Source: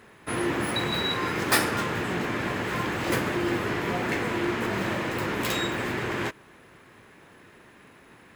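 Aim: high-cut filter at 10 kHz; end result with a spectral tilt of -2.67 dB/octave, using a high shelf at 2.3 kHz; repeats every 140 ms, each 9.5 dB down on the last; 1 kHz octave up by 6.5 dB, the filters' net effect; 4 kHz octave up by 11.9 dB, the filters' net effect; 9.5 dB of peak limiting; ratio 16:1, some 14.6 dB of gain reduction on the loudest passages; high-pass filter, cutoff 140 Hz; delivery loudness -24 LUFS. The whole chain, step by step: high-pass 140 Hz; low-pass 10 kHz; peaking EQ 1 kHz +6 dB; treble shelf 2.3 kHz +7.5 dB; peaking EQ 4 kHz +7 dB; compression 16:1, threshold -25 dBFS; peak limiter -22 dBFS; feedback delay 140 ms, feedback 33%, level -9.5 dB; trim +5.5 dB

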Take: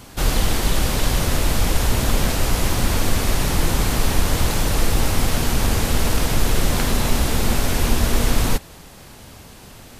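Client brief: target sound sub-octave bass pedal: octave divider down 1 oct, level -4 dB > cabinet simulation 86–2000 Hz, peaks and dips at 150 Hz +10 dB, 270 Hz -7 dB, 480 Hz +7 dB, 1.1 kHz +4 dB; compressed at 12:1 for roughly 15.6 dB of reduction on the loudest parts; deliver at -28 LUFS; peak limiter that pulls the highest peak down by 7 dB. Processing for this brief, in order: compression 12:1, threshold -27 dBFS; peak limiter -24.5 dBFS; octave divider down 1 oct, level -4 dB; cabinet simulation 86–2000 Hz, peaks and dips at 150 Hz +10 dB, 270 Hz -7 dB, 480 Hz +7 dB, 1.1 kHz +4 dB; trim +9.5 dB

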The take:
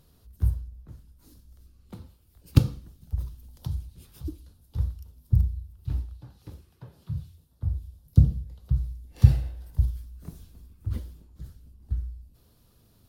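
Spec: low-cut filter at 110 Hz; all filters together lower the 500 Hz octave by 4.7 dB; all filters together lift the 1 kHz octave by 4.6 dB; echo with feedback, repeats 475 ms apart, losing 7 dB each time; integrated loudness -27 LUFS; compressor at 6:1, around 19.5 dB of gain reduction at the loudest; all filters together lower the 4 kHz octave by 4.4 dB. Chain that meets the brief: high-pass 110 Hz; peaking EQ 500 Hz -8 dB; peaking EQ 1 kHz +8.5 dB; peaking EQ 4 kHz -6 dB; compression 6:1, threshold -37 dBFS; feedback delay 475 ms, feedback 45%, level -7 dB; trim +20 dB

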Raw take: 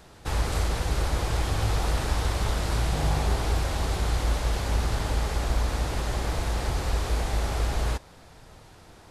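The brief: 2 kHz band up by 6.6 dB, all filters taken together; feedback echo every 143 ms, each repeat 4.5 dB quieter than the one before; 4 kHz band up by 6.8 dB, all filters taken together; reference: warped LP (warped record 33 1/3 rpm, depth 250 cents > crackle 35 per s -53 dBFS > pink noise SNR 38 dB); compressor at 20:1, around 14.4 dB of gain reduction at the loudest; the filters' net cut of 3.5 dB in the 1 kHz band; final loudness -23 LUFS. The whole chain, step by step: peaking EQ 1 kHz -7.5 dB; peaking EQ 2 kHz +9 dB; peaking EQ 4 kHz +6 dB; compression 20:1, threshold -34 dBFS; feedback delay 143 ms, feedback 60%, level -4.5 dB; warped record 33 1/3 rpm, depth 250 cents; crackle 35 per s -53 dBFS; pink noise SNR 38 dB; trim +14.5 dB

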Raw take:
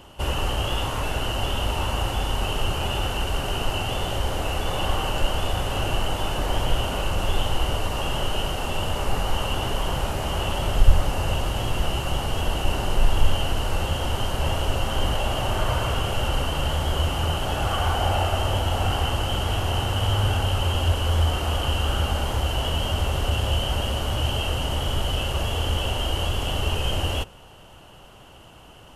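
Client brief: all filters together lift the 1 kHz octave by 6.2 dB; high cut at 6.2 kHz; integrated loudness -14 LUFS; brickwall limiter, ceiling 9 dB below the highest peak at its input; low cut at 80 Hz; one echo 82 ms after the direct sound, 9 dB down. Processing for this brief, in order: high-pass 80 Hz; low-pass 6.2 kHz; peaking EQ 1 kHz +8 dB; peak limiter -17.5 dBFS; delay 82 ms -9 dB; trim +12 dB

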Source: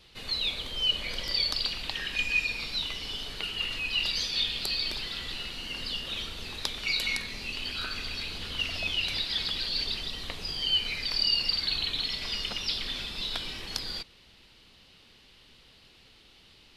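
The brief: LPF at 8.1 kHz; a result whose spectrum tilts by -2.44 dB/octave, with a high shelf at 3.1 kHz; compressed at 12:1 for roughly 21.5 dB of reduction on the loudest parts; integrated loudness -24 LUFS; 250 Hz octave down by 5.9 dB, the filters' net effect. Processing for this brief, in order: low-pass 8.1 kHz; peaking EQ 250 Hz -8 dB; treble shelf 3.1 kHz -8 dB; compression 12:1, threshold -48 dBFS; trim +26.5 dB

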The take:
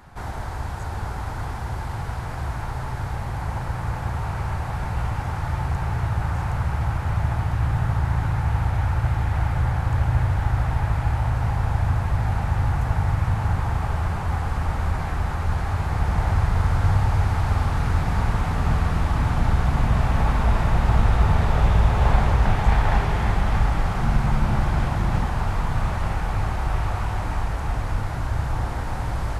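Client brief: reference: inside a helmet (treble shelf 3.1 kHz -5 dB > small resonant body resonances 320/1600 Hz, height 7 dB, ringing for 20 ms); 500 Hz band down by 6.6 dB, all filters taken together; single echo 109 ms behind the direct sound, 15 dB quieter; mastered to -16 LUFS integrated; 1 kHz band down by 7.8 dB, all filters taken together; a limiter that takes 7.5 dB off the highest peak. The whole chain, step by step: peaking EQ 500 Hz -6 dB; peaking EQ 1 kHz -7.5 dB; peak limiter -13.5 dBFS; treble shelf 3.1 kHz -5 dB; delay 109 ms -15 dB; small resonant body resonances 320/1600 Hz, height 7 dB, ringing for 20 ms; trim +9.5 dB

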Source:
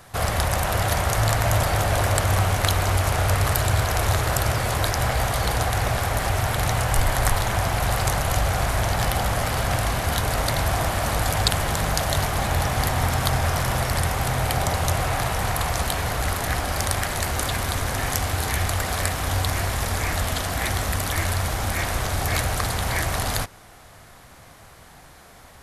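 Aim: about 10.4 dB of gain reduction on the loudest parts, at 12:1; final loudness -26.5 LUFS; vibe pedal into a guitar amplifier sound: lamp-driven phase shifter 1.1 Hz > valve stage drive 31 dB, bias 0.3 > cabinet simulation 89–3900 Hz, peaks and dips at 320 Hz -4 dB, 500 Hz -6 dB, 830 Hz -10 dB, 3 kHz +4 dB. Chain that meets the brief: compression 12:1, threshold -26 dBFS; lamp-driven phase shifter 1.1 Hz; valve stage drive 31 dB, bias 0.3; cabinet simulation 89–3900 Hz, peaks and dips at 320 Hz -4 dB, 500 Hz -6 dB, 830 Hz -10 dB, 3 kHz +4 dB; trim +13.5 dB

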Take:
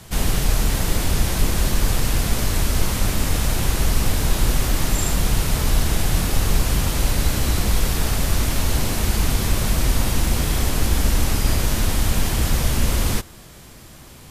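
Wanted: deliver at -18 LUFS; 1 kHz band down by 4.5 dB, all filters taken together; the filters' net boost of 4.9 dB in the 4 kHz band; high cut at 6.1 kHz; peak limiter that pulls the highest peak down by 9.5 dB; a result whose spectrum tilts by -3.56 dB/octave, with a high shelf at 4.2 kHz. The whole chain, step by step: low-pass 6.1 kHz; peaking EQ 1 kHz -6.5 dB; peaking EQ 4 kHz +4.5 dB; treble shelf 4.2 kHz +5 dB; trim +7.5 dB; peak limiter -7 dBFS

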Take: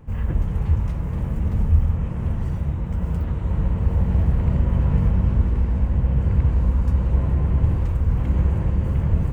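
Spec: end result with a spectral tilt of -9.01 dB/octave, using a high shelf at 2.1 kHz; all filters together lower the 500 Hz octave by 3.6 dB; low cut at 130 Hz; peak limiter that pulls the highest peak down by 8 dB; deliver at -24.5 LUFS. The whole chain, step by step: high-pass 130 Hz; peaking EQ 500 Hz -4 dB; treble shelf 2.1 kHz -5.5 dB; trim +6.5 dB; peak limiter -15 dBFS

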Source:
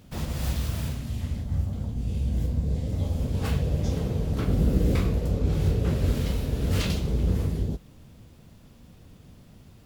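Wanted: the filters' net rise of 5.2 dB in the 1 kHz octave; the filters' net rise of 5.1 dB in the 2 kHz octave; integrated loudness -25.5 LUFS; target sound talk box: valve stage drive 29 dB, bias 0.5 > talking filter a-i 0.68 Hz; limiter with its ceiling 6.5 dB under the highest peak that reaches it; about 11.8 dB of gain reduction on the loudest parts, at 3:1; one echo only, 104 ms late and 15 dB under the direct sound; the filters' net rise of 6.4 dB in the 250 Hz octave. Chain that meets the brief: peaking EQ 250 Hz +8.5 dB; peaking EQ 1 kHz +5 dB; peaking EQ 2 kHz +5 dB; compression 3:1, threshold -31 dBFS; peak limiter -25.5 dBFS; delay 104 ms -15 dB; valve stage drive 29 dB, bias 0.5; talking filter a-i 0.68 Hz; trim +28 dB

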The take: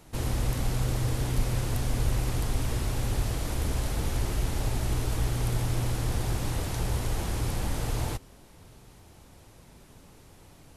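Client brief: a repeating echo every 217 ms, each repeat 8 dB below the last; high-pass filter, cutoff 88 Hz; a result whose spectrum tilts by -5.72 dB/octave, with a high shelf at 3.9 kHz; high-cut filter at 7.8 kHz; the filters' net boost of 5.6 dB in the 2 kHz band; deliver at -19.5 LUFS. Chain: high-pass 88 Hz; low-pass 7.8 kHz; peaking EQ 2 kHz +8.5 dB; treble shelf 3.9 kHz -6.5 dB; feedback delay 217 ms, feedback 40%, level -8 dB; trim +12 dB

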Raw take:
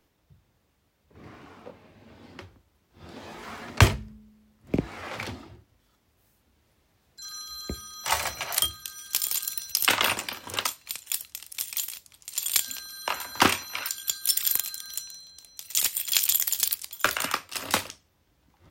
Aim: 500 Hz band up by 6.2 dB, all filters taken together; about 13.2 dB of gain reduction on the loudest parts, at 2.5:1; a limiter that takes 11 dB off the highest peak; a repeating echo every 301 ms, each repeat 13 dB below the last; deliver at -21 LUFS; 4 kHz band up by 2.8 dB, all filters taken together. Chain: peaking EQ 500 Hz +8 dB; peaking EQ 4 kHz +3.5 dB; compression 2.5:1, threshold -32 dBFS; peak limiter -19.5 dBFS; feedback delay 301 ms, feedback 22%, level -13 dB; trim +15 dB

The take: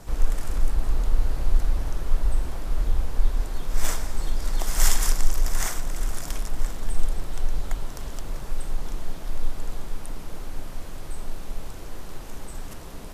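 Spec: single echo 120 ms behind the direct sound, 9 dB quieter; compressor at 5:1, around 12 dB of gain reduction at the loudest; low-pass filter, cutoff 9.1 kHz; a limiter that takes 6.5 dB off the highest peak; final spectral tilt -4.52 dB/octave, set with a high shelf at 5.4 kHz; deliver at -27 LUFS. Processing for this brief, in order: low-pass 9.1 kHz; treble shelf 5.4 kHz -3.5 dB; compression 5:1, threshold -24 dBFS; peak limiter -23 dBFS; delay 120 ms -9 dB; trim +13 dB

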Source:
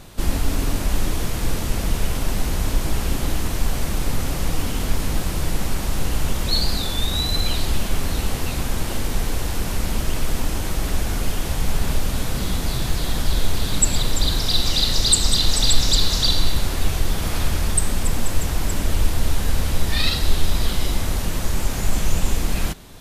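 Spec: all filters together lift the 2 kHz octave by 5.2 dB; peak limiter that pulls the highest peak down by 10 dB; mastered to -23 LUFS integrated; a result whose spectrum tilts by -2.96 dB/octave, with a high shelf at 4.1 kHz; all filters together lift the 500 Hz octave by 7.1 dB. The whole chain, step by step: peaking EQ 500 Hz +8.5 dB; peaking EQ 2 kHz +4 dB; treble shelf 4.1 kHz +8.5 dB; trim -3 dB; peak limiter -9.5 dBFS

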